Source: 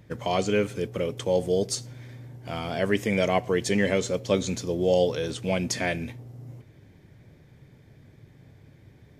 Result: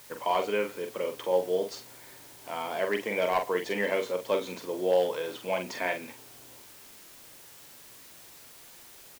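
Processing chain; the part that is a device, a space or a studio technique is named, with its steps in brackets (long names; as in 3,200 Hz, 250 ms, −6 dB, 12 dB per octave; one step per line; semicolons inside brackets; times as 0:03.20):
drive-through speaker (band-pass filter 400–3,100 Hz; parametric band 970 Hz +10 dB 0.28 octaves; hard clipping −15.5 dBFS, distortion −23 dB; white noise bed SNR 19 dB)
double-tracking delay 44 ms −6.5 dB
level −2.5 dB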